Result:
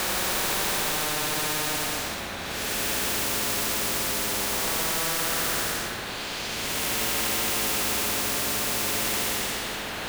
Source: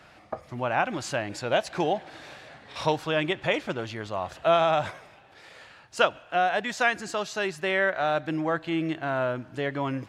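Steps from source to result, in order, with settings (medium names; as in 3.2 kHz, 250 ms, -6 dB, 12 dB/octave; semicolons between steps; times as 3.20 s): cycle switcher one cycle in 3, inverted; Paulstretch 10×, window 0.10 s, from 8.00 s; spectrum-flattening compressor 4:1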